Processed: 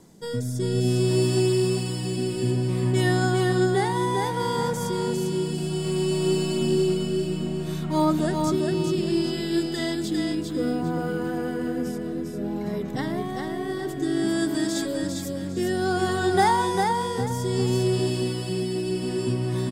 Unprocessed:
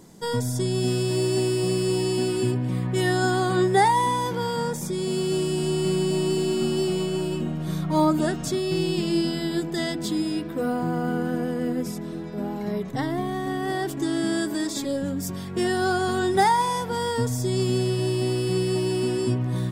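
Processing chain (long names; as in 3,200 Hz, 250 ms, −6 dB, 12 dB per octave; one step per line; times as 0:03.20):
rotating-speaker cabinet horn 0.6 Hz
on a send: repeating echo 401 ms, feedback 28%, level −4 dB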